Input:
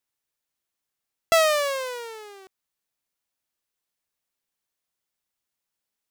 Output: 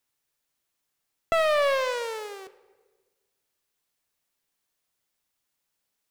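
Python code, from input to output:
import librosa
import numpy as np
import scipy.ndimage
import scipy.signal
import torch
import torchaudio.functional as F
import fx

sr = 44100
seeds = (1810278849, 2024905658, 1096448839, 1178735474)

p1 = fx.over_compress(x, sr, threshold_db=-26.0, ratio=-1.0)
p2 = x + (p1 * 10.0 ** (2.5 / 20.0))
p3 = fx.room_shoebox(p2, sr, seeds[0], volume_m3=1100.0, walls='mixed', distance_m=0.36)
p4 = fx.slew_limit(p3, sr, full_power_hz=520.0)
y = p4 * 10.0 ** (-5.5 / 20.0)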